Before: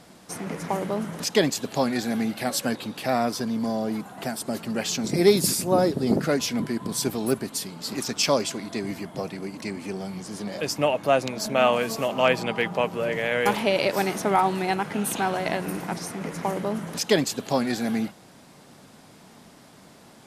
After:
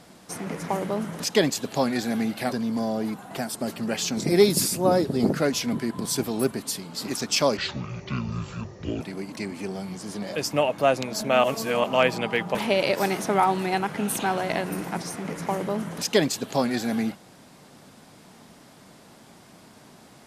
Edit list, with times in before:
2.52–3.39 cut
8.44–9.26 speed 57%
11.69–12.09 reverse
12.8–13.51 cut

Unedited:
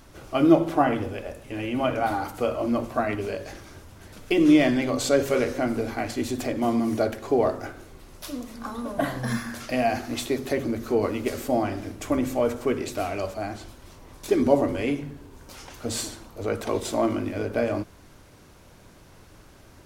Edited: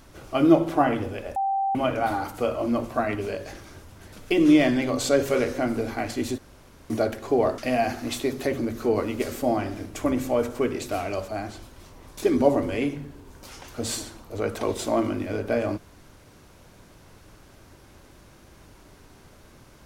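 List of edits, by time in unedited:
1.36–1.75 bleep 782 Hz -21.5 dBFS
6.38–6.9 room tone
7.58–9.64 cut

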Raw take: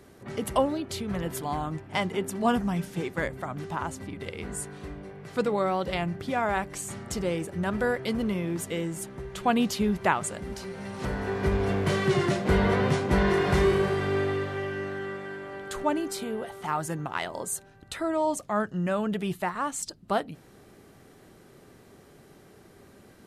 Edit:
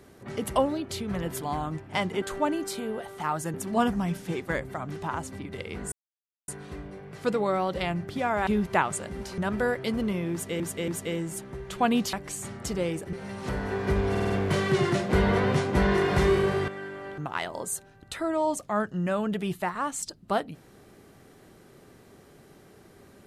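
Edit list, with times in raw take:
4.6 insert silence 0.56 s
6.59–7.59 swap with 9.78–10.69
8.53–8.81 loop, 3 plays
11.66 stutter 0.05 s, 5 plays
14.04–15.16 cut
15.66–16.98 move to 2.22

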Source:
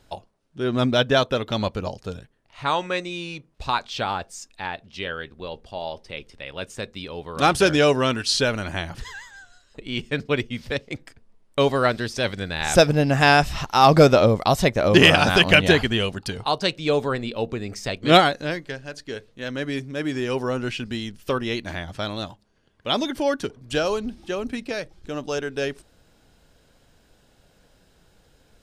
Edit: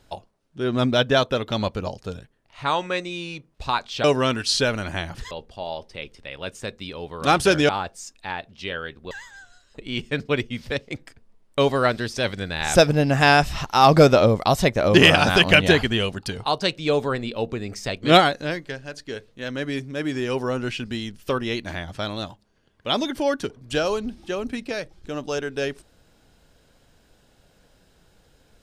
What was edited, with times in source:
4.04–5.46 swap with 7.84–9.11

